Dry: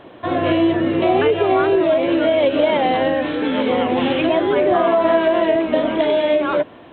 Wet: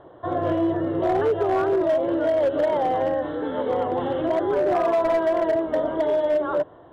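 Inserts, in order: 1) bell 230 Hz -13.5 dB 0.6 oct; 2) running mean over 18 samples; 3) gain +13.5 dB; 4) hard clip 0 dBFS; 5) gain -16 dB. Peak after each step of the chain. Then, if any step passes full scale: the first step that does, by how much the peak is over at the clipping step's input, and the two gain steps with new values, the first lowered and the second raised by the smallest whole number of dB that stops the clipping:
-4.5, -6.5, +7.0, 0.0, -16.0 dBFS; step 3, 7.0 dB; step 3 +6.5 dB, step 5 -9 dB

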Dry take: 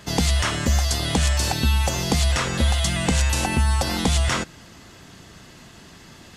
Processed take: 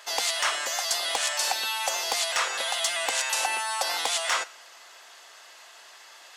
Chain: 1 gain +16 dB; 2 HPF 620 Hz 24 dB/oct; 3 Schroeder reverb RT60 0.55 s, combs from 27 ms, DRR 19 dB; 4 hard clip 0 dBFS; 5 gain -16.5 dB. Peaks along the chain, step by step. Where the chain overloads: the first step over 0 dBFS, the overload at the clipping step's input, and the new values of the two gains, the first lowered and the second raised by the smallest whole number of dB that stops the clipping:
+6.0, +8.5, +8.5, 0.0, -16.5 dBFS; step 1, 8.5 dB; step 1 +7 dB, step 5 -7.5 dB

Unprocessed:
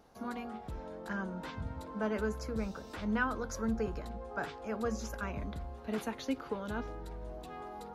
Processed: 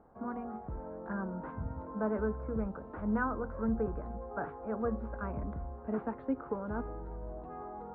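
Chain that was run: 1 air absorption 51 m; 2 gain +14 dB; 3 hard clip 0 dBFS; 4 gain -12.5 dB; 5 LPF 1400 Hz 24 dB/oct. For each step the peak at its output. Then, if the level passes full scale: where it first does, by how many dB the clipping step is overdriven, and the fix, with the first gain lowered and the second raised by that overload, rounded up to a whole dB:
-18.5, -4.5, -4.5, -17.0, -19.0 dBFS; no overload

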